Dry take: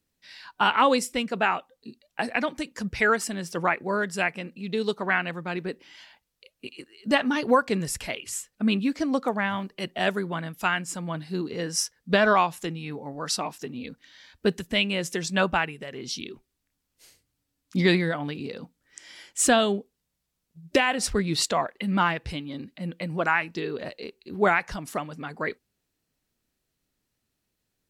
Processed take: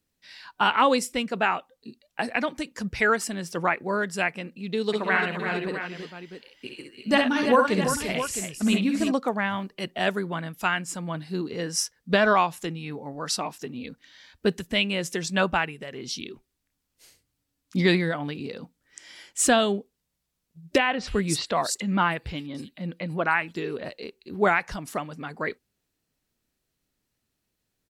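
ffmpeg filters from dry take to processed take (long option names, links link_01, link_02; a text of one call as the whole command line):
ffmpeg -i in.wav -filter_complex "[0:a]asplit=3[link_01][link_02][link_03];[link_01]afade=type=out:start_time=4.92:duration=0.02[link_04];[link_02]aecho=1:1:53|67|299|342|662:0.447|0.473|0.106|0.398|0.299,afade=type=in:start_time=4.92:duration=0.02,afade=type=out:start_time=9.11:duration=0.02[link_05];[link_03]afade=type=in:start_time=9.11:duration=0.02[link_06];[link_04][link_05][link_06]amix=inputs=3:normalize=0,asettb=1/sr,asplit=3[link_07][link_08][link_09];[link_07]atrim=end=20.784[link_10];[link_08]atrim=start=20.78:end=23.84,asetpts=PTS-STARTPTS,afade=type=in:duration=0.004:curve=qsin,afade=type=out:start_time=3.056:duration=0.004:curve=qsin,acrossover=split=4700[link_11][link_12];[link_12]adelay=290[link_13];[link_11][link_13]amix=inputs=2:normalize=0,atrim=end_sample=134946[link_14];[link_09]atrim=start=23.836[link_15];[link_10][link_14]acrossfade=duration=0.004:curve1=hsin:curve2=qsin[link_16];[link_16][link_15]acrossfade=duration=0.004:curve1=qsin:curve2=hsin" out.wav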